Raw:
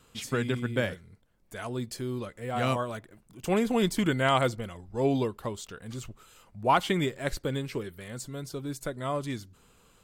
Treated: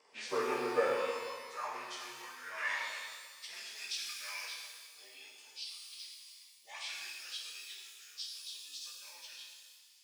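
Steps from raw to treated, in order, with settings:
partials spread apart or drawn together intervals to 88%
high-pass filter sweep 530 Hz → 3,700 Hz, 0:00.80–0:03.77
reverb with rising layers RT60 1.6 s, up +12 semitones, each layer −8 dB, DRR −2.5 dB
level −5.5 dB

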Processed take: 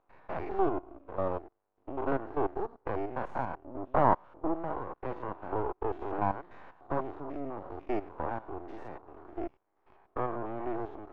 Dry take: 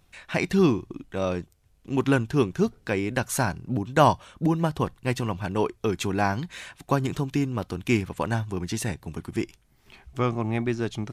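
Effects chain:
spectrum averaged block by block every 100 ms
Butterworth high-pass 300 Hz 36 dB per octave
half-wave rectification
low-pass with resonance 980 Hz, resonance Q 1.7

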